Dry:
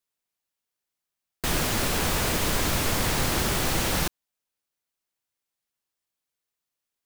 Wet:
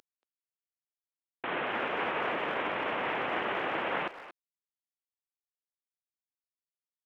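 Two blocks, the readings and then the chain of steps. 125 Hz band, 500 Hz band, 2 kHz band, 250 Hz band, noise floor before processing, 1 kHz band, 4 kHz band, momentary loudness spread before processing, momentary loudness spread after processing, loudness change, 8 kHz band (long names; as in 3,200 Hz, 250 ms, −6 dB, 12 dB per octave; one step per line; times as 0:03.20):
−22.0 dB, −3.0 dB, −2.5 dB, −10.0 dB, below −85 dBFS, −1.5 dB, −12.5 dB, 4 LU, 7 LU, −7.5 dB, below −40 dB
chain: variable-slope delta modulation 16 kbit/s
reversed playback
upward compression, threshold −40 dBFS
reversed playback
high-pass filter 430 Hz 12 dB per octave
far-end echo of a speakerphone 230 ms, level −13 dB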